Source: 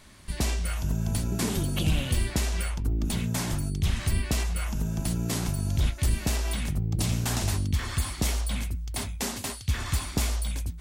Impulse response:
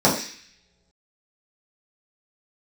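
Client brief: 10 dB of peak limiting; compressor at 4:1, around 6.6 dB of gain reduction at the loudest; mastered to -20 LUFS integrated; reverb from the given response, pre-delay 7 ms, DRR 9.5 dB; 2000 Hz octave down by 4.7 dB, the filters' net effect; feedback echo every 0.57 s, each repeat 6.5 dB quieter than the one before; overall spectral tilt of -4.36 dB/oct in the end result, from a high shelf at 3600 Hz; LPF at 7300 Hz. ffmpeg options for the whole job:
-filter_complex "[0:a]lowpass=7.3k,equalizer=f=2k:t=o:g=-9,highshelf=f=3.6k:g=8.5,acompressor=threshold=-28dB:ratio=4,alimiter=level_in=2dB:limit=-24dB:level=0:latency=1,volume=-2dB,aecho=1:1:570|1140|1710|2280|2850|3420:0.473|0.222|0.105|0.0491|0.0231|0.0109,asplit=2[a][b];[1:a]atrim=start_sample=2205,adelay=7[c];[b][c]afir=irnorm=-1:irlink=0,volume=-30dB[d];[a][d]amix=inputs=2:normalize=0,volume=14dB"

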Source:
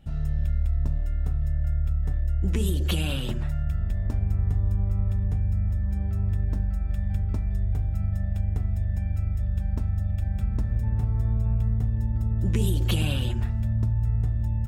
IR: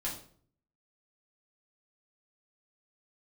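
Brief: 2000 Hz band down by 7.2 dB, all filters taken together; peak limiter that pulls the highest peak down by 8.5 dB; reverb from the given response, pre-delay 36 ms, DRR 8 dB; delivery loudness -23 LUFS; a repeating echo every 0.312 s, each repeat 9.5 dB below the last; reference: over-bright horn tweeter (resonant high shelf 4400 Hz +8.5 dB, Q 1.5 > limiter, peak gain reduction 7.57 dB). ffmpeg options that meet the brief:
-filter_complex "[0:a]equalizer=f=2k:t=o:g=-8,alimiter=limit=-21dB:level=0:latency=1,aecho=1:1:312|624|936|1248:0.335|0.111|0.0365|0.012,asplit=2[a][b];[1:a]atrim=start_sample=2205,adelay=36[c];[b][c]afir=irnorm=-1:irlink=0,volume=-10.5dB[d];[a][d]amix=inputs=2:normalize=0,highshelf=f=4.4k:t=q:w=1.5:g=8.5,volume=8.5dB,alimiter=limit=-14dB:level=0:latency=1"

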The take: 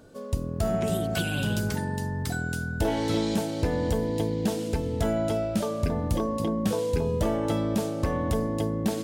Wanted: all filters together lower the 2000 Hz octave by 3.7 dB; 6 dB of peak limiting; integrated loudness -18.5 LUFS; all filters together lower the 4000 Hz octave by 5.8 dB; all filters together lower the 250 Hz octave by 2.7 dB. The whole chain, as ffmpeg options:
-af "equalizer=f=250:t=o:g=-3.5,equalizer=f=2k:t=o:g=-4.5,equalizer=f=4k:t=o:g=-6,volume=12.5dB,alimiter=limit=-8.5dB:level=0:latency=1"

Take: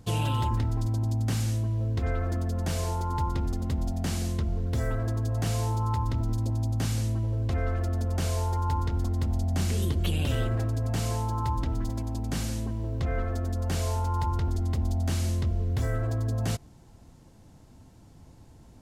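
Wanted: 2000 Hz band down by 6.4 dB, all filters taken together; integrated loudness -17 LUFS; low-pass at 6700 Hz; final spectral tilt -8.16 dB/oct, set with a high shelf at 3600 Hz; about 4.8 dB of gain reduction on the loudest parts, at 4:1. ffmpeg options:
-af "lowpass=6.7k,equalizer=f=2k:t=o:g=-7,highshelf=f=3.6k:g=-5.5,acompressor=threshold=-29dB:ratio=4,volume=16.5dB"

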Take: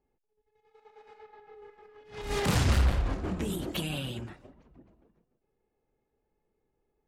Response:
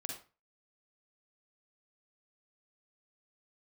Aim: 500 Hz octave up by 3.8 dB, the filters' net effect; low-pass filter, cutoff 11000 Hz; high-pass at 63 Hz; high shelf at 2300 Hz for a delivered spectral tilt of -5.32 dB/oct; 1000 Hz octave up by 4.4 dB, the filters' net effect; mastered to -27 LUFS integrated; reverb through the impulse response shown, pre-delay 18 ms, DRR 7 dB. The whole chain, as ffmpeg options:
-filter_complex "[0:a]highpass=63,lowpass=11k,equalizer=f=500:t=o:g=4,equalizer=f=1k:t=o:g=5,highshelf=f=2.3k:g=-3.5,asplit=2[a][b];[1:a]atrim=start_sample=2205,adelay=18[c];[b][c]afir=irnorm=-1:irlink=0,volume=-6dB[d];[a][d]amix=inputs=2:normalize=0,volume=2.5dB"

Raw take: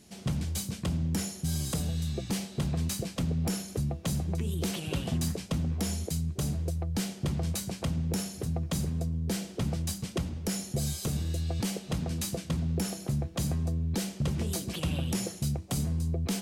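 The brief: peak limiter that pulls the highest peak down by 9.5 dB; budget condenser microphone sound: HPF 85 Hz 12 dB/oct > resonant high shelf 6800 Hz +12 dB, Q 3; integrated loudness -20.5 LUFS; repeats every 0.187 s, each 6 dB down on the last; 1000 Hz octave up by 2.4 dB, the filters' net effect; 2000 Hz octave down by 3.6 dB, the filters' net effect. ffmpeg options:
-af "equalizer=f=1k:t=o:g=4.5,equalizer=f=2k:t=o:g=-4.5,alimiter=level_in=6dB:limit=-24dB:level=0:latency=1,volume=-6dB,highpass=85,highshelf=f=6.8k:t=q:w=3:g=12,aecho=1:1:187|374|561|748|935|1122:0.501|0.251|0.125|0.0626|0.0313|0.0157,volume=10dB"

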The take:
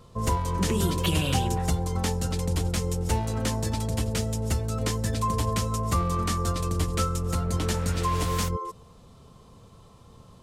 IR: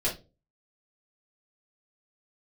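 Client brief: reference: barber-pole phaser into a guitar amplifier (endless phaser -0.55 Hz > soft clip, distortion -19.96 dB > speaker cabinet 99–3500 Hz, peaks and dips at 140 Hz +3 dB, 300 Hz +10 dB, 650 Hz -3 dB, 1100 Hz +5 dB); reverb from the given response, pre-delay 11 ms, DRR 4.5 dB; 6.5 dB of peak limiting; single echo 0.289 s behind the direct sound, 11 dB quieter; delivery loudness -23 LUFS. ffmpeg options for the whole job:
-filter_complex "[0:a]alimiter=limit=-18dB:level=0:latency=1,aecho=1:1:289:0.282,asplit=2[a][b];[1:a]atrim=start_sample=2205,adelay=11[c];[b][c]afir=irnorm=-1:irlink=0,volume=-12.5dB[d];[a][d]amix=inputs=2:normalize=0,asplit=2[e][f];[f]afreqshift=-0.55[g];[e][g]amix=inputs=2:normalize=1,asoftclip=threshold=-20.5dB,highpass=99,equalizer=f=140:t=q:w=4:g=3,equalizer=f=300:t=q:w=4:g=10,equalizer=f=650:t=q:w=4:g=-3,equalizer=f=1.1k:t=q:w=4:g=5,lowpass=f=3.5k:w=0.5412,lowpass=f=3.5k:w=1.3066,volume=8.5dB"

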